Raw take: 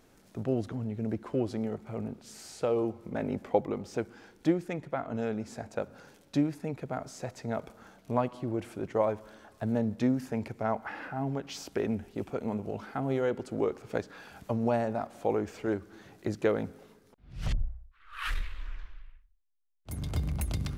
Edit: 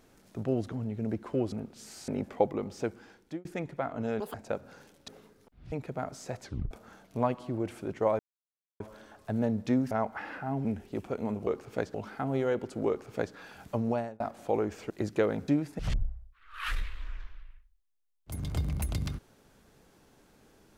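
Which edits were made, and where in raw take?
0:01.52–0:02.00: remove
0:02.56–0:03.22: remove
0:03.96–0:04.59: fade out equal-power
0:05.34–0:05.61: play speed 192%
0:06.35–0:06.66: swap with 0:16.74–0:17.38
0:07.37: tape stop 0.28 s
0:09.13: splice in silence 0.61 s
0:10.24–0:10.61: remove
0:11.35–0:11.88: remove
0:13.64–0:14.11: duplicate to 0:12.70
0:14.61–0:14.96: fade out
0:15.66–0:16.16: remove

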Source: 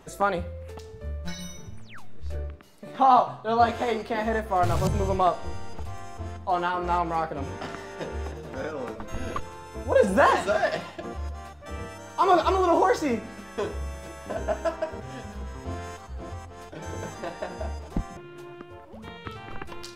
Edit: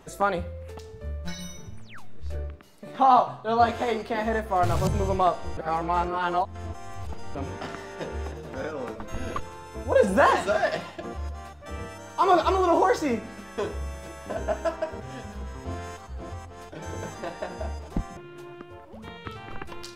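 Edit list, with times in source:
0:05.57–0:07.35: reverse

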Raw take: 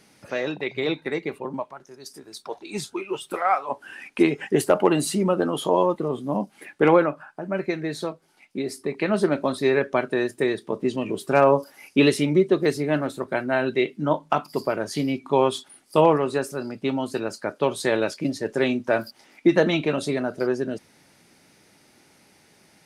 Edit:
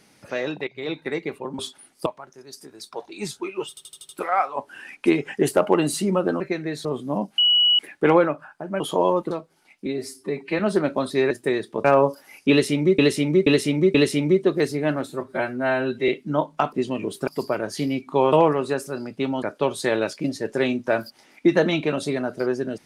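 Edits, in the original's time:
0:00.67–0:01.05: fade in, from −16 dB
0:03.22: stutter 0.08 s, 6 plays
0:05.53–0:06.04: swap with 0:07.58–0:08.03
0:06.57: insert tone 2,930 Hz −14 dBFS 0.41 s
0:08.58–0:09.07: time-stretch 1.5×
0:09.78–0:10.25: remove
0:10.79–0:11.34: move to 0:14.45
0:12.00–0:12.48: repeat, 4 plays
0:13.15–0:13.81: time-stretch 1.5×
0:15.50–0:15.97: move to 0:01.59
0:17.07–0:17.43: remove

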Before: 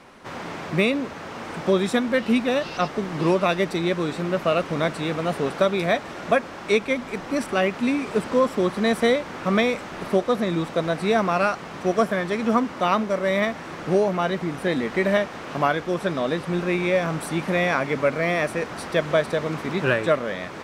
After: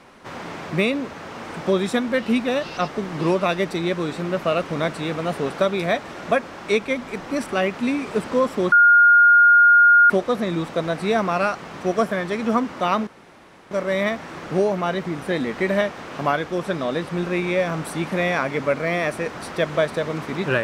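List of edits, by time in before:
0:08.72–0:10.10: beep over 1,420 Hz −9 dBFS
0:13.07: splice in room tone 0.64 s

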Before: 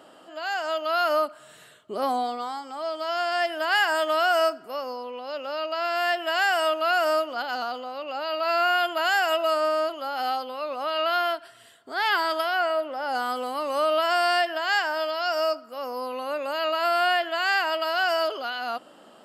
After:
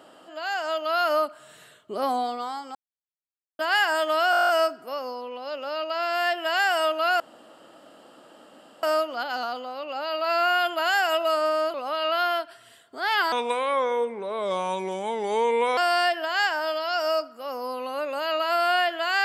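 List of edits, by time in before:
0:02.75–0:03.59: silence
0:04.31: stutter 0.02 s, 10 plays
0:07.02: splice in room tone 1.63 s
0:09.93–0:10.68: remove
0:12.26–0:14.10: play speed 75%

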